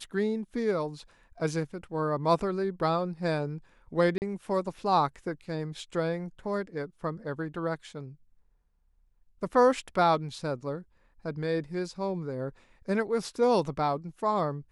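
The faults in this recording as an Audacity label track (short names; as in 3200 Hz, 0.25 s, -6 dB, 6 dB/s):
4.180000	4.220000	gap 39 ms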